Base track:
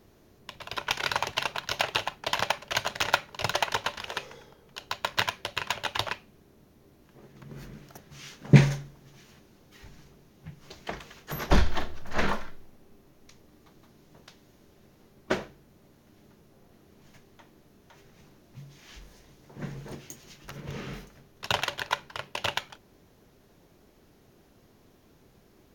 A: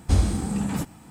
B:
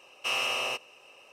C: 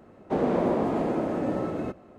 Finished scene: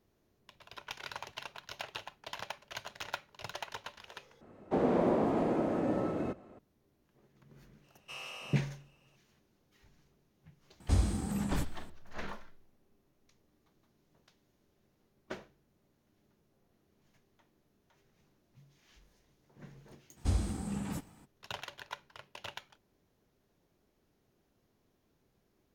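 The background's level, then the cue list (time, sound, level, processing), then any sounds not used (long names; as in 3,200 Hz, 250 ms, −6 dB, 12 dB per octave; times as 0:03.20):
base track −15 dB
0:04.41: overwrite with C −4 dB
0:07.84: mix in B −16 dB
0:10.80: mix in A −8.5 dB
0:20.16: mix in A −11 dB, fades 0.02 s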